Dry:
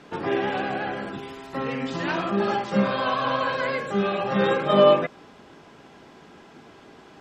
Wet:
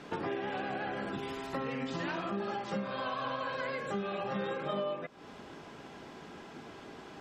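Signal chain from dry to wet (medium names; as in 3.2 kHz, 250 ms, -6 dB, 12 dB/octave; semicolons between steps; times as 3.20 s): compression 8:1, threshold -33 dBFS, peak gain reduction 20.5 dB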